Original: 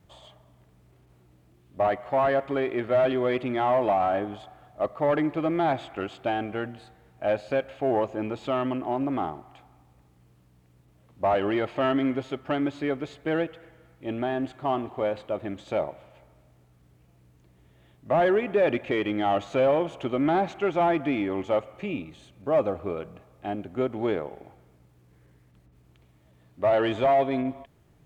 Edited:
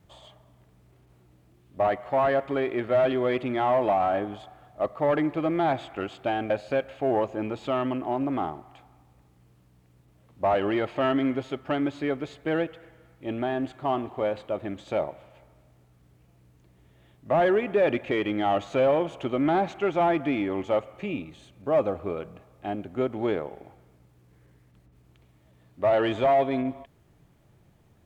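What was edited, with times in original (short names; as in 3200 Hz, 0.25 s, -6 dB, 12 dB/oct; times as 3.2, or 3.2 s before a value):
6.5–7.3 cut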